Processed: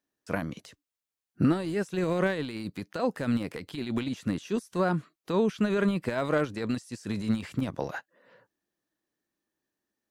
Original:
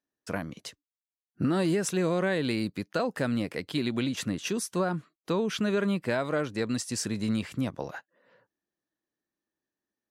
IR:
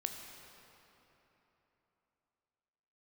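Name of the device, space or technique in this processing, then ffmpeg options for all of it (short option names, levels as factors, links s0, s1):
de-esser from a sidechain: -filter_complex "[0:a]asplit=2[s0][s1];[s1]highpass=f=4800:w=0.5412,highpass=f=4800:w=1.3066,apad=whole_len=445491[s2];[s0][s2]sidechaincompress=threshold=0.00224:ratio=6:attack=0.63:release=38,volume=1.58"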